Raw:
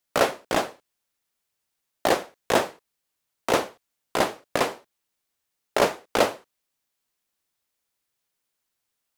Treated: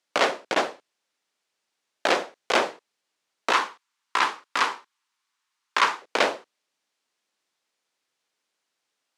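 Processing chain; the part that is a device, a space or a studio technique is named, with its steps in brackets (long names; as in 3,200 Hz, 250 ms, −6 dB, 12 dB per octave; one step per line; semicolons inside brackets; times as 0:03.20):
public-address speaker with an overloaded transformer (saturating transformer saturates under 3,100 Hz; band-pass filter 250–6,400 Hz)
0:03.52–0:06.02: low shelf with overshoot 800 Hz −7.5 dB, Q 3
level +5 dB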